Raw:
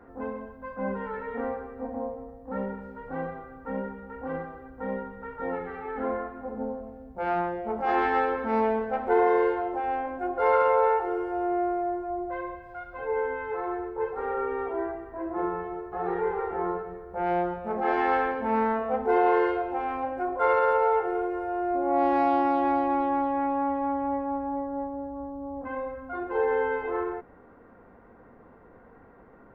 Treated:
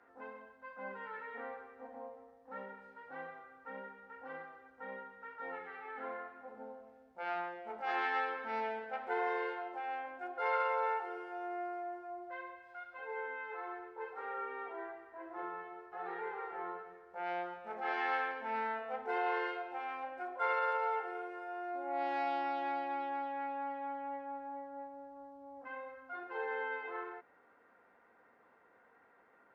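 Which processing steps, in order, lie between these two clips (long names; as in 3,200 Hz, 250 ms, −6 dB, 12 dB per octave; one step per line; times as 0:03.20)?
Bessel low-pass filter 3,100 Hz, order 2
first difference
notch filter 1,100 Hz, Q 16
level +8 dB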